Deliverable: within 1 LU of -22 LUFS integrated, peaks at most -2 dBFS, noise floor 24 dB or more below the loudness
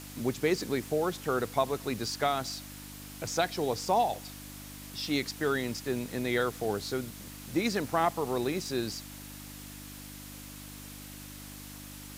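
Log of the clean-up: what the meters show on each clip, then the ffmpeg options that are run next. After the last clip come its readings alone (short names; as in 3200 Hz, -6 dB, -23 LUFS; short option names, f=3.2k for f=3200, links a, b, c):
hum 50 Hz; harmonics up to 300 Hz; hum level -45 dBFS; noise floor -46 dBFS; noise floor target -56 dBFS; loudness -31.5 LUFS; peak -14.0 dBFS; loudness target -22.0 LUFS
-> -af "bandreject=f=50:t=h:w=4,bandreject=f=100:t=h:w=4,bandreject=f=150:t=h:w=4,bandreject=f=200:t=h:w=4,bandreject=f=250:t=h:w=4,bandreject=f=300:t=h:w=4"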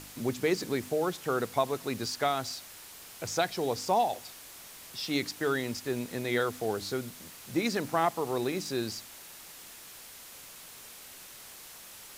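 hum none; noise floor -49 dBFS; noise floor target -56 dBFS
-> -af "afftdn=nr=7:nf=-49"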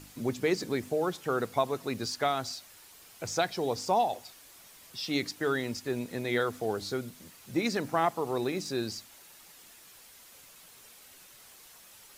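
noise floor -54 dBFS; noise floor target -56 dBFS
-> -af "afftdn=nr=6:nf=-54"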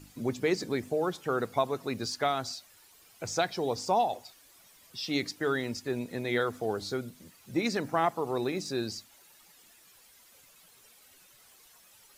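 noise floor -59 dBFS; loudness -31.5 LUFS; peak -14.0 dBFS; loudness target -22.0 LUFS
-> -af "volume=9.5dB"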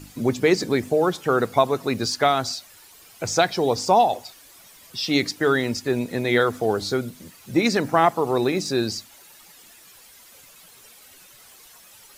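loudness -22.0 LUFS; peak -4.5 dBFS; noise floor -50 dBFS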